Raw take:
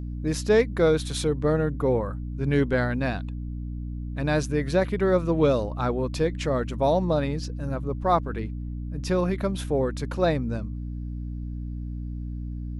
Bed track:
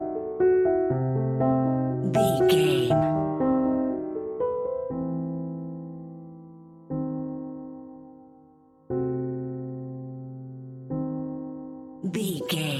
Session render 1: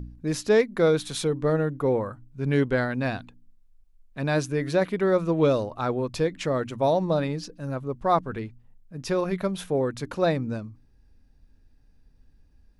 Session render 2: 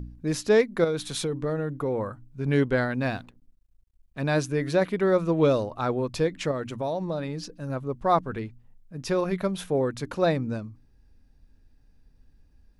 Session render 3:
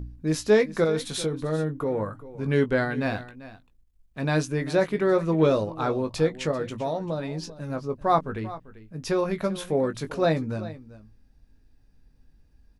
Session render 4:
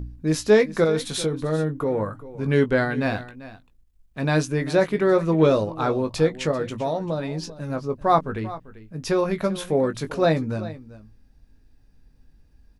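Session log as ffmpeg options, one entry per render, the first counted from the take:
-af "bandreject=f=60:t=h:w=4,bandreject=f=120:t=h:w=4,bandreject=f=180:t=h:w=4,bandreject=f=240:t=h:w=4,bandreject=f=300:t=h:w=4"
-filter_complex "[0:a]asettb=1/sr,asplit=3[a][b][c];[a]atrim=end=0.844[d];[b]atrim=start=0.84:end=2.48,asetpts=PTS-STARTPTS,afade=t=in:d=0.004:c=qsin,afade=t=out:st=1.636:d=0.004:c=qsin,acompressor=threshold=-23dB:ratio=6:attack=3.2:release=140:knee=1:detection=peak[e];[c]atrim=start=2.476[f];[d][e]acrossfade=d=0.004:c1=hsin:c2=qsin[g];[g][f]acrossfade=d=0.004:c1=qsin:c2=hsin,asettb=1/sr,asplit=3[h][i][j];[h]atrim=end=3.014[k];[i]atrim=start=3.01:end=4.21,asetpts=PTS-STARTPTS,afade=t=in:d=0.004:c=qsin,afade=t=out:st=1.196:d=0.004:c=qsin,aeval=exprs='sgn(val(0))*max(abs(val(0))-0.00141,0)':c=same[l];[j]atrim=start=4.206[m];[k][l]acrossfade=d=0.004:c1=hsin:c2=qsin[n];[n][m]acrossfade=d=0.004:c1=qsin:c2=hsin,asettb=1/sr,asplit=3[o][p][q];[o]atrim=end=6.514[r];[p]atrim=start=6.51:end=7.7,asetpts=PTS-STARTPTS,afade=t=in:d=0.004:c=qsin,afade=t=out:st=1.186:d=0.004:c=qsin,acompressor=threshold=-28dB:ratio=2.5:attack=3.2:release=140:knee=1:detection=peak[s];[q]atrim=start=7.696[t];[r][s]acrossfade=d=0.004:c1=hsin:c2=qsin[u];[u][t]acrossfade=d=0.004:c1=qsin:c2=hsin"
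-filter_complex "[0:a]asplit=2[a][b];[b]adelay=19,volume=-8.5dB[c];[a][c]amix=inputs=2:normalize=0,aecho=1:1:392:0.15"
-af "volume=3dB"

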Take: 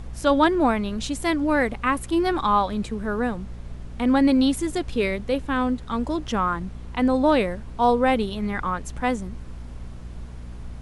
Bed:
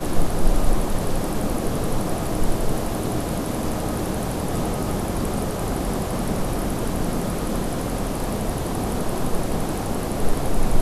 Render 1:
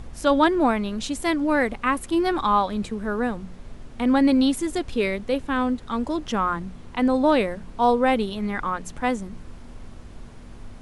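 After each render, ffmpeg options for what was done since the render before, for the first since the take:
-af "bandreject=f=60:t=h:w=4,bandreject=f=120:t=h:w=4,bandreject=f=180:t=h:w=4"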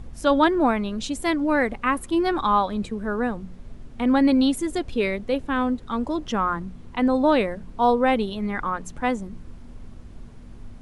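-af "afftdn=nr=6:nf=-42"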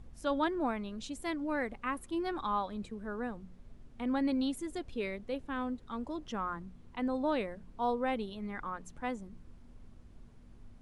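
-af "volume=-13dB"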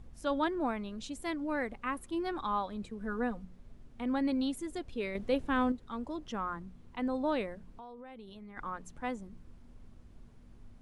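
-filter_complex "[0:a]asettb=1/sr,asplit=3[a][b][c];[a]atrim=end=3.004[d];[b]atrim=start=3:end=3.45,asetpts=PTS-STARTPTS,afade=t=in:d=0.004:c=qsin,afade=t=out:st=0.446:d=0.004:c=qsin,aecho=1:1:4.1:0.75,atrim=end_sample=19845[e];[c]atrim=start=3.446[f];[d][e]acrossfade=d=0.004:c1=hsin:c2=qsin[g];[g][f]acrossfade=d=0.004:c1=qsin:c2=hsin,asettb=1/sr,asplit=3[h][i][j];[h]atrim=end=5.154[k];[i]atrim=start=5.15:end=5.72,asetpts=PTS-STARTPTS,afade=t=in:d=0.004:c=qsin,afade=t=out:st=0.566:d=0.004:c=qsin,acontrast=80[l];[j]atrim=start=5.716[m];[k][l]acrossfade=d=0.004:c1=hsin:c2=qsin[n];[n][m]acrossfade=d=0.004:c1=qsin:c2=hsin,asplit=3[o][p][q];[o]afade=t=out:st=7.71:d=0.02[r];[p]acompressor=threshold=-45dB:ratio=10:attack=3.2:release=140:knee=1:detection=peak,afade=t=in:st=7.71:d=0.02,afade=t=out:st=8.56:d=0.02[s];[q]afade=t=in:st=8.56:d=0.02[t];[r][s][t]amix=inputs=3:normalize=0"

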